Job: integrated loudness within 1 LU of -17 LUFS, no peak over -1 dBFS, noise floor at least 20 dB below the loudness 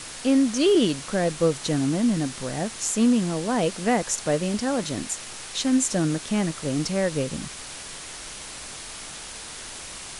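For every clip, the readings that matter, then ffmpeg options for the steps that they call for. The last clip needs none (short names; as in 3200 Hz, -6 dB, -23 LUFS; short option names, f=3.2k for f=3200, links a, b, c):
noise floor -39 dBFS; noise floor target -44 dBFS; loudness -24.0 LUFS; peak -9.0 dBFS; loudness target -17.0 LUFS
-> -af "afftdn=nr=6:nf=-39"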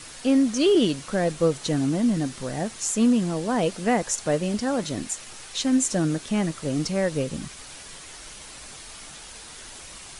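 noise floor -43 dBFS; noise floor target -44 dBFS
-> -af "afftdn=nr=6:nf=-43"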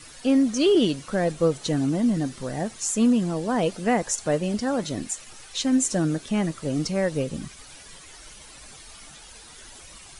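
noise floor -46 dBFS; loudness -24.5 LUFS; peak -9.5 dBFS; loudness target -17.0 LUFS
-> -af "volume=7.5dB"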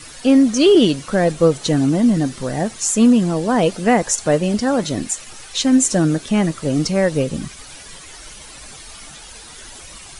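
loudness -17.0 LUFS; peak -2.0 dBFS; noise floor -39 dBFS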